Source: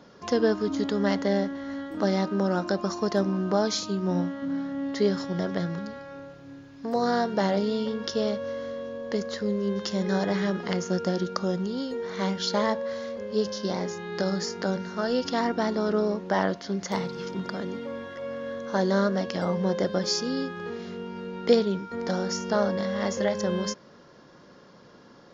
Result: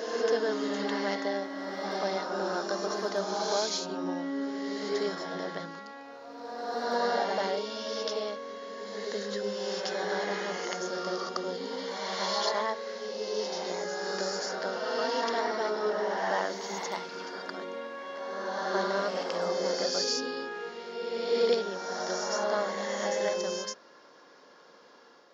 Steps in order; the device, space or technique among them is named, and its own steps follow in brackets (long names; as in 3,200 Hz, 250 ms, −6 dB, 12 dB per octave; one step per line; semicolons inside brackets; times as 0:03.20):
ghost voice (reversed playback; convolution reverb RT60 1.8 s, pre-delay 75 ms, DRR −2 dB; reversed playback; high-pass filter 470 Hz 12 dB per octave)
level −4 dB